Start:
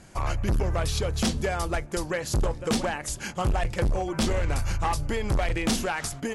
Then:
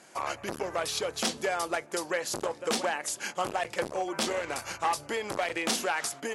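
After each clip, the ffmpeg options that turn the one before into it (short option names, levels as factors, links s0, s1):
-af "highpass=390"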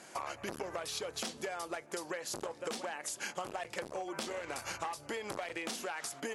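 -af "acompressor=threshold=0.0141:ratio=12,volume=1.19"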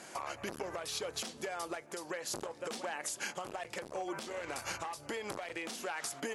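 -af "alimiter=level_in=1.88:limit=0.0631:level=0:latency=1:release=347,volume=0.531,volume=1.41"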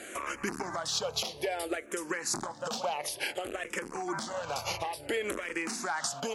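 -filter_complex "[0:a]asplit=2[s0][s1];[s1]afreqshift=-0.58[s2];[s0][s2]amix=inputs=2:normalize=1,volume=2.82"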